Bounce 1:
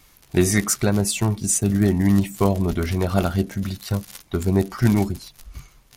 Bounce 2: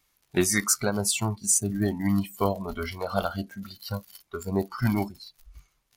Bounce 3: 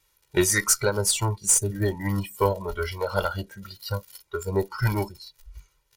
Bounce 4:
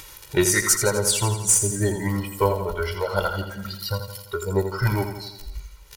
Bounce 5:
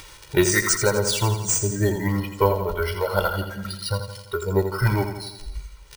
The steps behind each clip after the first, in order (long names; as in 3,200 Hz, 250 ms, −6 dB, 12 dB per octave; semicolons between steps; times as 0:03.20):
noise reduction from a noise print of the clip's start 14 dB; low-shelf EQ 410 Hz −6.5 dB; level −1 dB
harmonic generator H 4 −26 dB, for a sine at −9 dBFS; comb filter 2.1 ms, depth 96%
upward compression, threshold −27 dBFS; on a send: repeating echo 84 ms, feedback 57%, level −8.5 dB; on the sum: level +1.5 dB
bad sample-rate conversion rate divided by 3×, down filtered, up hold; level +1.5 dB